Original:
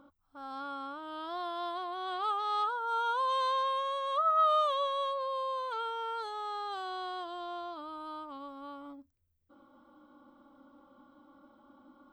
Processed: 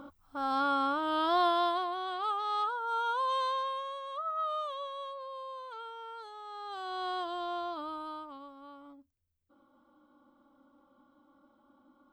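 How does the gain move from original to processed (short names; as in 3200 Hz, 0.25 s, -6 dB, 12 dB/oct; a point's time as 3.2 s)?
1.46 s +11 dB
2.13 s -0.5 dB
3.37 s -0.5 dB
4.15 s -8 dB
6.45 s -8 dB
7.1 s +4 dB
7.89 s +4 dB
8.55 s -5.5 dB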